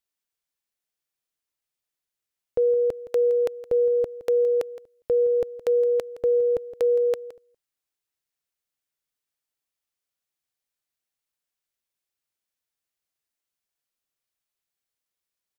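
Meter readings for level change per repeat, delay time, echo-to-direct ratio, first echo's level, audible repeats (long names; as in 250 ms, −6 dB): repeats not evenly spaced, 167 ms, −15.5 dB, −15.5 dB, 1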